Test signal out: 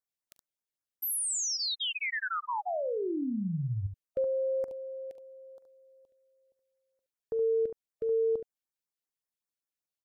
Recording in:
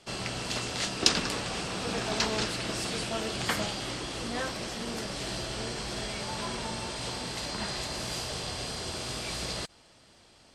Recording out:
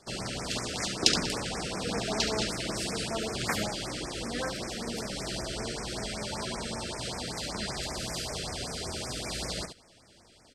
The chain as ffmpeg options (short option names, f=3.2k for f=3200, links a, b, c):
-af "aecho=1:1:42|71:0.126|0.376,afftfilt=real='re*(1-between(b*sr/1024,850*pow(3700/850,0.5+0.5*sin(2*PI*5.2*pts/sr))/1.41,850*pow(3700/850,0.5+0.5*sin(2*PI*5.2*pts/sr))*1.41))':imag='im*(1-between(b*sr/1024,850*pow(3700/850,0.5+0.5*sin(2*PI*5.2*pts/sr))/1.41,850*pow(3700/850,0.5+0.5*sin(2*PI*5.2*pts/sr))*1.41))':win_size=1024:overlap=0.75"